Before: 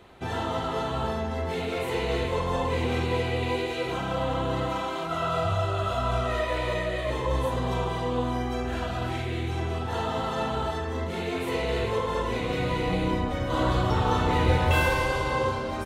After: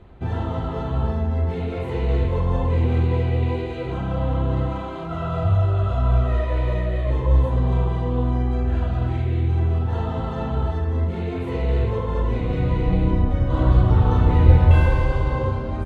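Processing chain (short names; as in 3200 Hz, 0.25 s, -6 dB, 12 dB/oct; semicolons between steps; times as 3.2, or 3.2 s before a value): RIAA curve playback; notch 5500 Hz, Q 26; gain -2.5 dB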